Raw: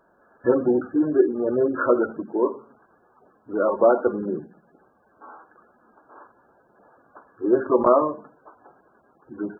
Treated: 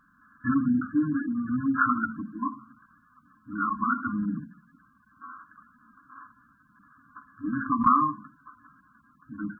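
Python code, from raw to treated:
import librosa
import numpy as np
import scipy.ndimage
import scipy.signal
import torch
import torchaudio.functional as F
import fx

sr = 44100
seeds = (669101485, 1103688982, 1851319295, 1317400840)

y = fx.brickwall_bandstop(x, sr, low_hz=300.0, high_hz=1000.0)
y = F.gain(torch.from_numpy(y), 3.0).numpy()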